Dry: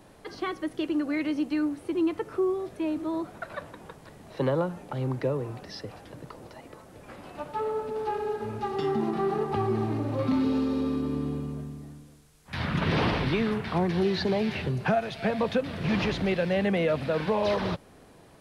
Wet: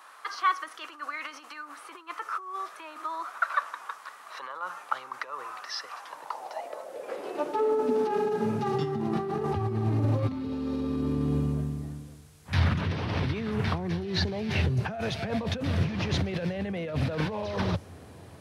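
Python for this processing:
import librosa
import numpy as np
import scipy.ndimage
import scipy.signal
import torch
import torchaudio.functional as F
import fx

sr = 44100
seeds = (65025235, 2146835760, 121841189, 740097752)

y = fx.over_compress(x, sr, threshold_db=-31.0, ratio=-1.0)
y = fx.filter_sweep_highpass(y, sr, from_hz=1200.0, to_hz=87.0, start_s=5.89, end_s=9.32, q=4.5)
y = fx.dynamic_eq(y, sr, hz=5900.0, q=2.7, threshold_db=-60.0, ratio=4.0, max_db=5)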